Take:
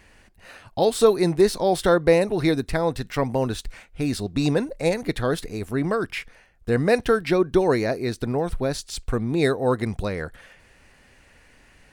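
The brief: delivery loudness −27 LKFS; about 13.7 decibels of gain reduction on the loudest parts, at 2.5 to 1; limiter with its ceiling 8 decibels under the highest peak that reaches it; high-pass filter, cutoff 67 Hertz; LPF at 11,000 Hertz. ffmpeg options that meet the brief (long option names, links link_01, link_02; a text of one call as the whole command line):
ffmpeg -i in.wav -af "highpass=67,lowpass=11000,acompressor=threshold=-33dB:ratio=2.5,volume=9.5dB,alimiter=limit=-16.5dB:level=0:latency=1" out.wav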